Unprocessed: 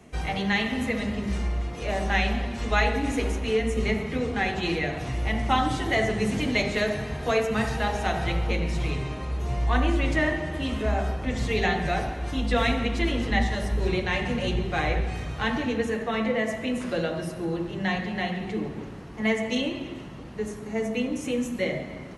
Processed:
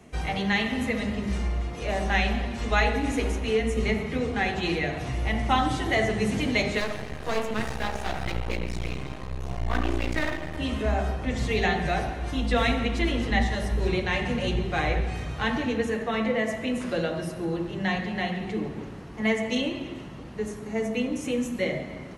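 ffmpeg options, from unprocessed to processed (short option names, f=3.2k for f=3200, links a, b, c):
-filter_complex "[0:a]asettb=1/sr,asplit=3[a][b][c];[a]atrim=end=6.804[d];[b]atrim=start=6.8:end=10.58,asetpts=PTS-STARTPTS,afade=t=in:d=0.004:c=qsin,afade=t=out:st=3.776:d=0.004:c=qsin,aeval=exprs='max(val(0),0)':c=same[e];[c]atrim=start=10.576[f];[d][e]acrossfade=d=0.004:c1=hsin:c2=qsin[g];[g][f]acrossfade=d=0.004:c1=qsin:c2=hsin"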